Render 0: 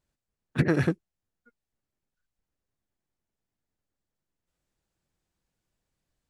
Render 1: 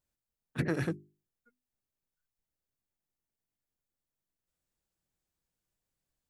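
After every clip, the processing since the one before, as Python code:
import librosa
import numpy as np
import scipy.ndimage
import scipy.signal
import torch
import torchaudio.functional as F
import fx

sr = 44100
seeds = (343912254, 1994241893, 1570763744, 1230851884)

y = fx.high_shelf(x, sr, hz=8600.0, db=10.0)
y = fx.hum_notches(y, sr, base_hz=50, count=8)
y = y * librosa.db_to_amplitude(-7.0)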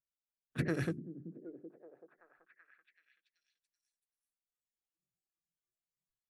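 y = fx.noise_reduce_blind(x, sr, reduce_db=18)
y = fx.peak_eq(y, sr, hz=890.0, db=-6.5, octaves=0.43)
y = fx.echo_stepped(y, sr, ms=382, hz=230.0, octaves=0.7, feedback_pct=70, wet_db=-8.5)
y = y * librosa.db_to_amplitude(-2.5)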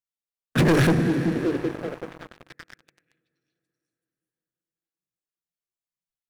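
y = fx.rev_plate(x, sr, seeds[0], rt60_s=4.6, hf_ratio=0.75, predelay_ms=0, drr_db=13.0)
y = fx.leveller(y, sr, passes=5)
y = y * librosa.db_to_amplitude(6.5)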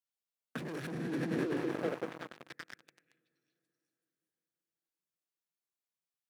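y = fx.over_compress(x, sr, threshold_db=-27.0, ratio=-1.0)
y = scipy.signal.sosfilt(scipy.signal.butter(2, 160.0, 'highpass', fs=sr, output='sos'), y)
y = y * librosa.db_to_amplitude(-8.0)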